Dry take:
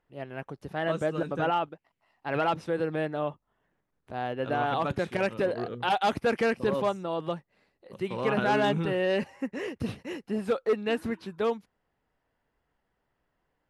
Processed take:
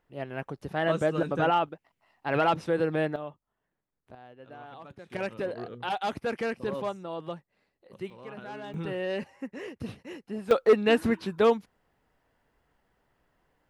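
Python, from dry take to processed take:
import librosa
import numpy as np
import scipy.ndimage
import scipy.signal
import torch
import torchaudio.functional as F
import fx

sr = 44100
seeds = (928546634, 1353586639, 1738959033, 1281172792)

y = fx.gain(x, sr, db=fx.steps((0.0, 2.5), (3.16, -8.0), (4.15, -18.0), (5.1, -5.0), (8.1, -16.0), (8.74, -5.0), (10.51, 6.0)))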